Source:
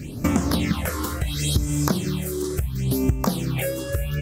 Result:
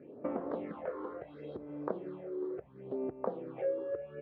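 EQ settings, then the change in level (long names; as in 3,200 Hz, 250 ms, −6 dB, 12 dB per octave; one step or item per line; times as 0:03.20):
four-pole ladder band-pass 570 Hz, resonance 45%
high-frequency loss of the air 380 metres
+3.0 dB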